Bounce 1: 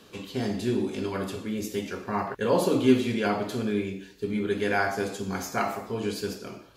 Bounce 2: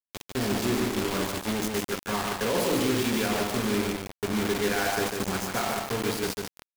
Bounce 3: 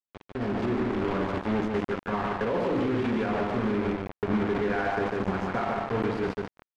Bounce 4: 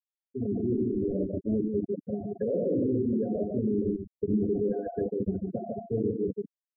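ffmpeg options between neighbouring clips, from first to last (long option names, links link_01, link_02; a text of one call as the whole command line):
ffmpeg -i in.wav -filter_complex "[0:a]alimiter=limit=-19dB:level=0:latency=1:release=49,acrusher=bits=4:mix=0:aa=0.000001,asplit=2[link_01][link_02];[link_02]aecho=0:1:147:0.631[link_03];[link_01][link_03]amix=inputs=2:normalize=0" out.wav
ffmpeg -i in.wav -af "lowpass=1700,alimiter=limit=-22.5dB:level=0:latency=1:release=42,dynaudnorm=framelen=190:gausssize=5:maxgain=7dB,volume=-3.5dB" out.wav
ffmpeg -i in.wav -af "aeval=exprs='val(0)+0.5*0.00631*sgn(val(0))':channel_layout=same,afftfilt=real='re*gte(hypot(re,im),0.126)':imag='im*gte(hypot(re,im),0.126)':win_size=1024:overlap=0.75,asuperstop=centerf=1100:order=12:qfactor=0.92" out.wav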